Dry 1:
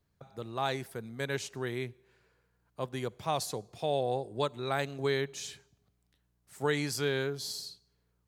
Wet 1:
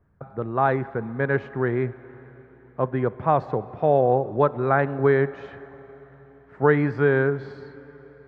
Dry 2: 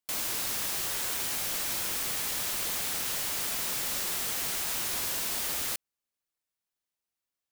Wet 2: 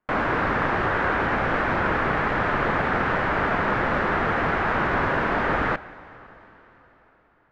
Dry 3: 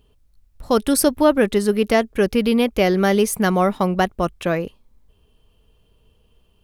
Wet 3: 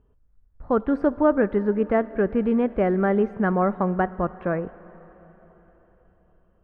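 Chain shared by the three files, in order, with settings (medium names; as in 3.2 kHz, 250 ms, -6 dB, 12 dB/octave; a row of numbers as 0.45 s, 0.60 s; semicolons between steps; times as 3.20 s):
Chebyshev low-pass 1.6 kHz, order 3; plate-style reverb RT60 4.3 s, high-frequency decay 0.95×, DRR 16.5 dB; normalise loudness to -23 LUFS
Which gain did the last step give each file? +12.5 dB, +20.0 dB, -3.5 dB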